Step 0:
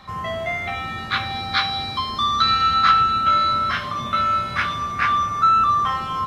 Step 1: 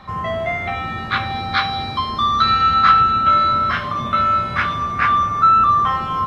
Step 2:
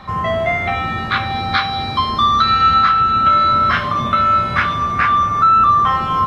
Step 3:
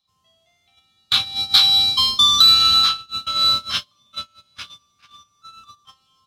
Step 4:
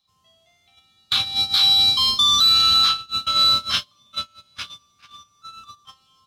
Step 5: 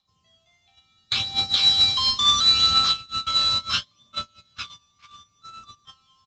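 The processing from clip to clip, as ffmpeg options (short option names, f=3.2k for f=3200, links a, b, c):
-af "highshelf=f=3.3k:g=-11.5,volume=5dB"
-af "alimiter=limit=-9.5dB:level=0:latency=1:release=422,volume=4.5dB"
-af "aexciter=amount=13.2:drive=8.7:freq=3k,agate=range=-37dB:threshold=-6dB:ratio=16:detection=peak,volume=-11.5dB"
-af "alimiter=level_in=11dB:limit=-1dB:release=50:level=0:latency=1,volume=-8.5dB"
-af "aphaser=in_gain=1:out_gain=1:delay=1.2:decay=0.45:speed=0.72:type=triangular,aresample=16000,acrusher=bits=4:mode=log:mix=0:aa=0.000001,aresample=44100,volume=-3.5dB"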